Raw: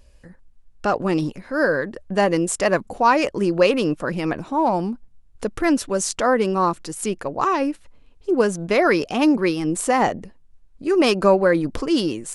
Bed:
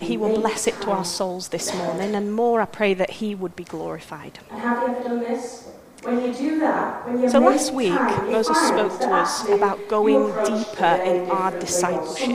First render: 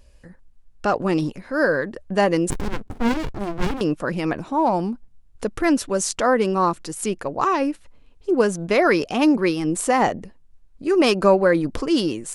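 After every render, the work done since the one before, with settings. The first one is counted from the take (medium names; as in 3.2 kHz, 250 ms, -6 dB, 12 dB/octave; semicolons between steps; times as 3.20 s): 2.50–3.81 s: sliding maximum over 65 samples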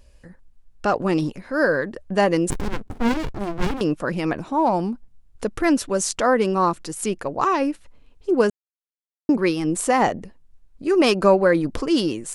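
8.50–9.29 s: mute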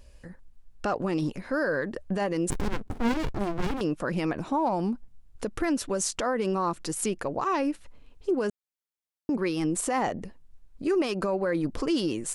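compression 2.5:1, threshold -24 dBFS, peak gain reduction 9.5 dB; peak limiter -18.5 dBFS, peak gain reduction 9.5 dB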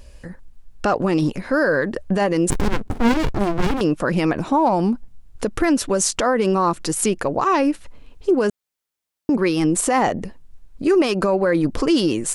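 trim +9 dB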